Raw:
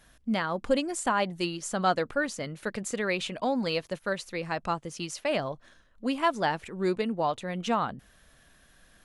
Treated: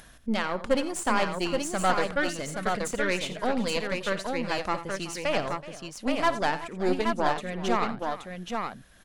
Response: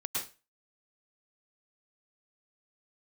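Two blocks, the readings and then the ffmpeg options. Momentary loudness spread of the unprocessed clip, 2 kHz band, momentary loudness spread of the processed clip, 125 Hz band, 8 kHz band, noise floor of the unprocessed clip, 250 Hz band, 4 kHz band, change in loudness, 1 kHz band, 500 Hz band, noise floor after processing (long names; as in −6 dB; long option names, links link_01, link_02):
8 LU, +3.0 dB, 8 LU, 0.0 dB, +2.0 dB, −61 dBFS, +1.0 dB, +2.0 dB, +1.5 dB, +2.0 dB, +1.5 dB, −51 dBFS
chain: -af "aeval=exprs='0.251*(cos(1*acos(clip(val(0)/0.251,-1,1)))-cos(1*PI/2))+0.0316*(cos(6*acos(clip(val(0)/0.251,-1,1)))-cos(6*PI/2))':channel_layout=same,aecho=1:1:55|87|376|825:0.133|0.211|0.15|0.596,acompressor=mode=upward:threshold=-44dB:ratio=2.5"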